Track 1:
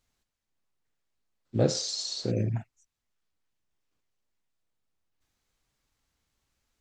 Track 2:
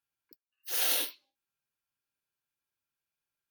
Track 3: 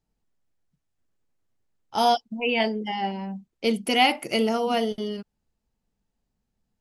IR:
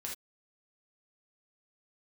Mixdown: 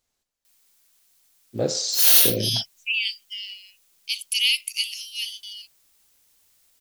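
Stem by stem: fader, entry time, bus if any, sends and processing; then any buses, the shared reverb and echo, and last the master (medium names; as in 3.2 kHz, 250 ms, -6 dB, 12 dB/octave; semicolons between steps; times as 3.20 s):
-3.5 dB, 0.00 s, no send, peaking EQ 540 Hz +8 dB 2.2 oct; gain riding 0.5 s
0.0 dB, 1.25 s, no send, three bands expanded up and down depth 70%
-1.0 dB, 0.45 s, no send, Chebyshev high-pass 2.5 kHz, order 5; word length cut 12-bit, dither triangular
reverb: none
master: treble shelf 2.7 kHz +12 dB; saturation -1 dBFS, distortion -27 dB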